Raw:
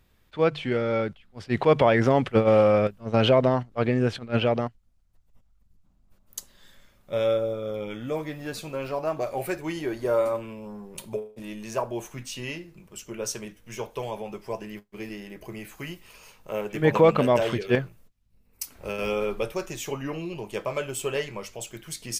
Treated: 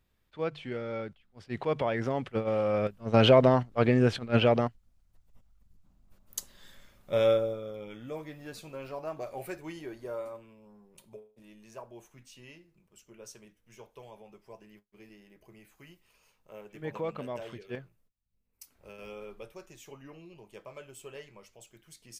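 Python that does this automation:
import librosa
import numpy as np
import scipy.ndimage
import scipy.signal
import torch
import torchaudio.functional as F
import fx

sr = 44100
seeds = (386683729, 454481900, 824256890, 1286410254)

y = fx.gain(x, sr, db=fx.line((2.6, -10.5), (3.17, 0.0), (7.3, 0.0), (7.73, -9.5), (9.62, -9.5), (10.49, -17.0)))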